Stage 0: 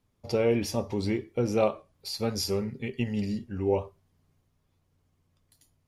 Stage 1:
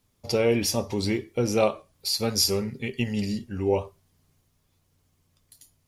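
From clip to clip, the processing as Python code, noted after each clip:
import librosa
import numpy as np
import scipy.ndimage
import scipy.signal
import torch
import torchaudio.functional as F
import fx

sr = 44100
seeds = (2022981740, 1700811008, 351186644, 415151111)

y = fx.high_shelf(x, sr, hz=3100.0, db=10.0)
y = y * 10.0 ** (2.0 / 20.0)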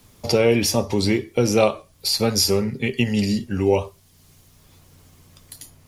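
y = fx.band_squash(x, sr, depth_pct=40)
y = y * 10.0 ** (6.0 / 20.0)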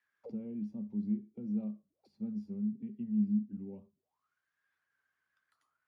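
y = fx.auto_wah(x, sr, base_hz=210.0, top_hz=1800.0, q=15.0, full_db=-22.5, direction='down')
y = y * 10.0 ** (-6.0 / 20.0)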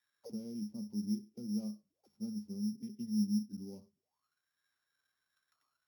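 y = np.r_[np.sort(x[:len(x) // 8 * 8].reshape(-1, 8), axis=1).ravel(), x[len(x) // 8 * 8:]]
y = y * 10.0 ** (-2.0 / 20.0)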